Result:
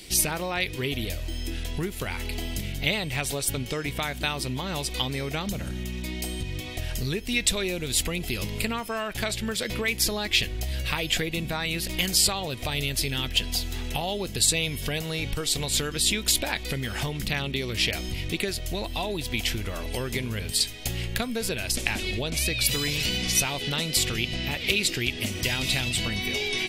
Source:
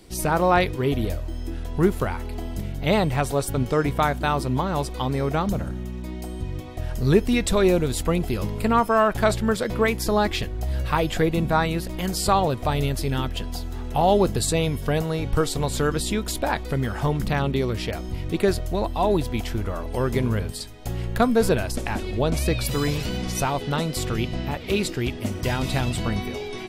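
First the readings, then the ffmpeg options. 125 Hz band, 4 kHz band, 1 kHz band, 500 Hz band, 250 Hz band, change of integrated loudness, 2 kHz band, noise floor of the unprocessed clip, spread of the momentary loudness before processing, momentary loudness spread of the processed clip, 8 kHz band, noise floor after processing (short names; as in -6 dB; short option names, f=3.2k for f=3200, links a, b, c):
-6.5 dB, +7.0 dB, -11.0 dB, -9.5 dB, -8.0 dB, -2.5 dB, +1.5 dB, -33 dBFS, 11 LU, 9 LU, +6.5 dB, -36 dBFS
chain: -af "acompressor=threshold=-27dB:ratio=6,highshelf=f=1.7k:t=q:w=1.5:g=11"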